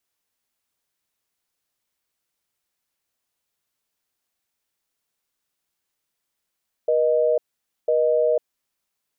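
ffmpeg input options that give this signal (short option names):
-f lavfi -i "aevalsrc='0.112*(sin(2*PI*480*t)+sin(2*PI*620*t))*clip(min(mod(t,1),0.5-mod(t,1))/0.005,0,1)':d=1.63:s=44100"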